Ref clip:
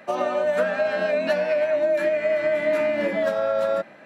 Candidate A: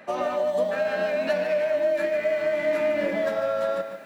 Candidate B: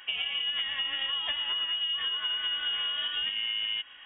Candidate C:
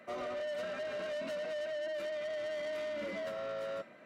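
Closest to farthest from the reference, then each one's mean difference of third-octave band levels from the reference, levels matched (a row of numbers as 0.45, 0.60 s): A, C, B; 2.0, 4.5, 11.0 dB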